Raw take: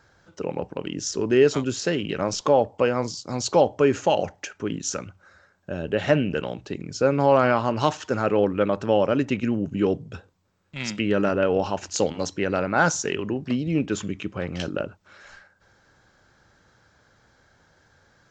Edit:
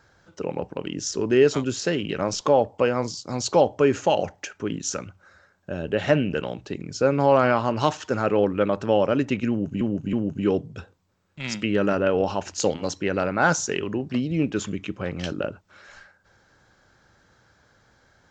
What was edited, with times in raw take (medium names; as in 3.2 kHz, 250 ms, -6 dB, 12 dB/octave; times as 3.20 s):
9.49–9.81 s: loop, 3 plays